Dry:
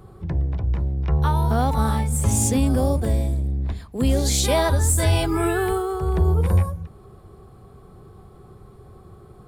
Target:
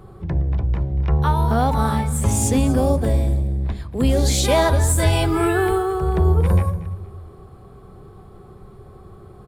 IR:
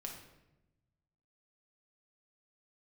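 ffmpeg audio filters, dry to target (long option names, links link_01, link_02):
-filter_complex "[0:a]bass=frequency=250:gain=-3,treble=frequency=4000:gain=-4,aecho=1:1:235|470|705:0.133|0.0413|0.0128,asplit=2[link_01][link_02];[1:a]atrim=start_sample=2205,lowshelf=frequency=260:gain=11[link_03];[link_02][link_03]afir=irnorm=-1:irlink=0,volume=-11.5dB[link_04];[link_01][link_04]amix=inputs=2:normalize=0,volume=2dB"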